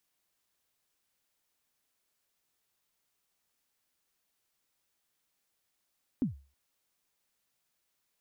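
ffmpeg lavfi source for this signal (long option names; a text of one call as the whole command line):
ffmpeg -f lavfi -i "aevalsrc='0.075*pow(10,-3*t/0.35)*sin(2*PI*(290*0.127/log(69/290)*(exp(log(69/290)*min(t,0.127)/0.127)-1)+69*max(t-0.127,0)))':duration=0.32:sample_rate=44100" out.wav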